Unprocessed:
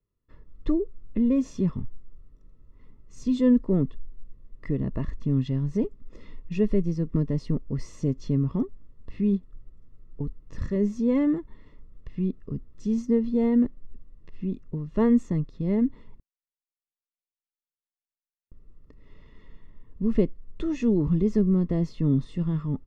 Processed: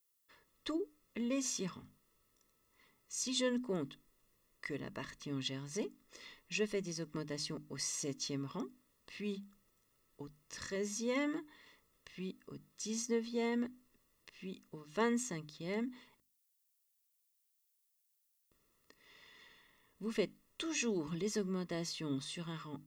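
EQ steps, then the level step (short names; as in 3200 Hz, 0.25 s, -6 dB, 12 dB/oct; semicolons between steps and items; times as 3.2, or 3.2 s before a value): differentiator; notches 50/100/150/200/250/300 Hz; +14.0 dB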